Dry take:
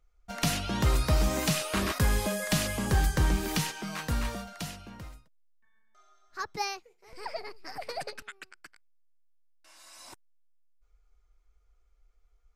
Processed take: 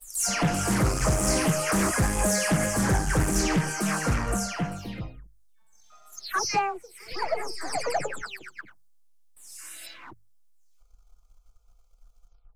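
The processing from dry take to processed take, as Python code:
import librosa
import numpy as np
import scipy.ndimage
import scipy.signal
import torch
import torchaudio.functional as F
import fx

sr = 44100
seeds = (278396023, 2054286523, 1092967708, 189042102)

p1 = fx.spec_delay(x, sr, highs='early', ms=280)
p2 = fx.high_shelf(p1, sr, hz=4500.0, db=7.5)
p3 = fx.rider(p2, sr, range_db=3, speed_s=0.5)
p4 = p2 + (p3 * 10.0 ** (1.0 / 20.0))
p5 = 10.0 ** (-15.5 / 20.0) * np.tanh(p4 / 10.0 ** (-15.5 / 20.0))
p6 = fx.env_phaser(p5, sr, low_hz=260.0, high_hz=3700.0, full_db=-29.5)
p7 = fx.leveller(p6, sr, passes=1)
p8 = fx.high_shelf(p7, sr, hz=9800.0, db=-5.5)
p9 = fx.hum_notches(p8, sr, base_hz=50, count=3)
y = fx.doppler_dist(p9, sr, depth_ms=0.34)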